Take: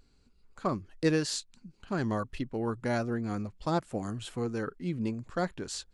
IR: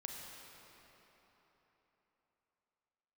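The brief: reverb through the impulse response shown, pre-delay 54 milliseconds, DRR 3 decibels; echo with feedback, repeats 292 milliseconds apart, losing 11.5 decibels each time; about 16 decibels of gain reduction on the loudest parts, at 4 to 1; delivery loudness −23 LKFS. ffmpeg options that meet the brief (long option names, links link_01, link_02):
-filter_complex "[0:a]acompressor=threshold=-42dB:ratio=4,aecho=1:1:292|584|876:0.266|0.0718|0.0194,asplit=2[link_01][link_02];[1:a]atrim=start_sample=2205,adelay=54[link_03];[link_02][link_03]afir=irnorm=-1:irlink=0,volume=-1dB[link_04];[link_01][link_04]amix=inputs=2:normalize=0,volume=20dB"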